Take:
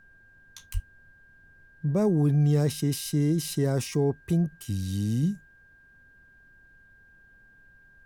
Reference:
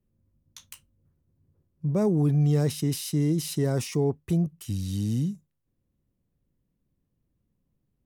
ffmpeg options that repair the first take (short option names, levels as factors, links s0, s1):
-filter_complex "[0:a]bandreject=f=1600:w=30,asplit=3[s0][s1][s2];[s0]afade=t=out:st=0.73:d=0.02[s3];[s1]highpass=f=140:w=0.5412,highpass=f=140:w=1.3066,afade=t=in:st=0.73:d=0.02,afade=t=out:st=0.85:d=0.02[s4];[s2]afade=t=in:st=0.85:d=0.02[s5];[s3][s4][s5]amix=inputs=3:normalize=0,agate=range=0.0891:threshold=0.00355,asetnsamples=n=441:p=0,asendcmd='5.23 volume volume -3dB',volume=1"